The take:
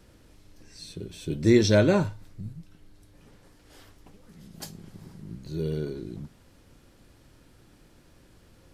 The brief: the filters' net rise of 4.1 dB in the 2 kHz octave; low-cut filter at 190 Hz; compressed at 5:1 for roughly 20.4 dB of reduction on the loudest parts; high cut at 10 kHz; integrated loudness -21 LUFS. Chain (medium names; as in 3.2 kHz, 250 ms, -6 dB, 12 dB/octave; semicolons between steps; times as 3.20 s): high-pass 190 Hz; low-pass 10 kHz; peaking EQ 2 kHz +5.5 dB; compression 5:1, threshold -38 dBFS; trim +23 dB